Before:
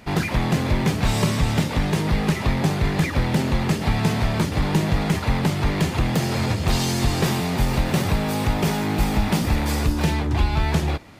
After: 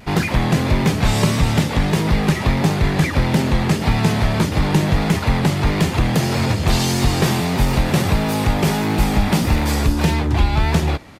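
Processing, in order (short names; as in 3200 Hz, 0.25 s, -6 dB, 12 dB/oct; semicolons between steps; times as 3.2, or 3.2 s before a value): downsampling 32000 Hz; vibrato 1.6 Hz 44 cents; gain +4 dB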